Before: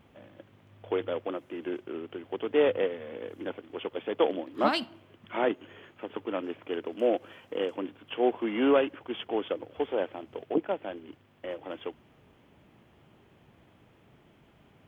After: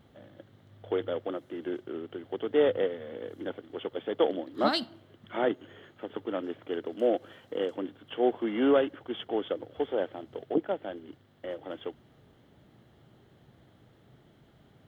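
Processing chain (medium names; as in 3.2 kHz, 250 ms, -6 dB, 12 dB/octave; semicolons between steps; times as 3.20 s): graphic EQ with 31 bands 125 Hz +5 dB, 1 kHz -6 dB, 2.5 kHz -11 dB, 4 kHz +8 dB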